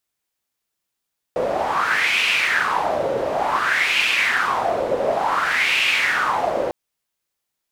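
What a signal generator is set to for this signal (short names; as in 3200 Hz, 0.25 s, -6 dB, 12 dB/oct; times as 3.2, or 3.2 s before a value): wind-like swept noise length 5.35 s, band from 530 Hz, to 2600 Hz, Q 4.9, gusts 3, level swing 3 dB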